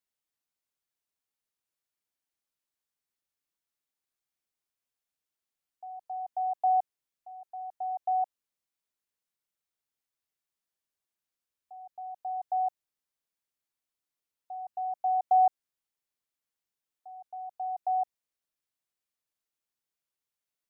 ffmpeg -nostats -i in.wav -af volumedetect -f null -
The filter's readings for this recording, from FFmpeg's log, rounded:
mean_volume: -36.6 dB
max_volume: -17.0 dB